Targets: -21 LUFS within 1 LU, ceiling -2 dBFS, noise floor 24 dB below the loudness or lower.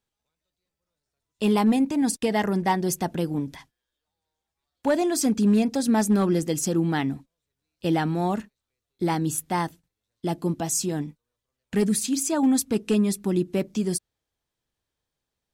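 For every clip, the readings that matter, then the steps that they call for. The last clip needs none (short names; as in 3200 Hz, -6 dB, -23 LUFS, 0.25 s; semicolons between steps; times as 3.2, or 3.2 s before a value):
clipped 0.3%; flat tops at -14.0 dBFS; loudness -24.5 LUFS; peak -14.0 dBFS; loudness target -21.0 LUFS
-> clip repair -14 dBFS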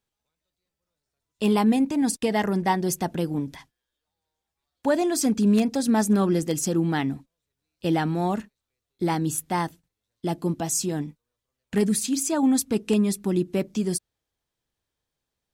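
clipped 0.0%; loudness -24.5 LUFS; peak -7.5 dBFS; loudness target -21.0 LUFS
-> gain +3.5 dB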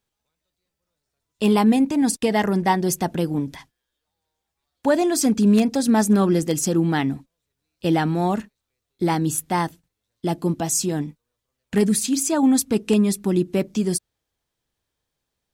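loudness -21.0 LUFS; peak -4.0 dBFS; noise floor -81 dBFS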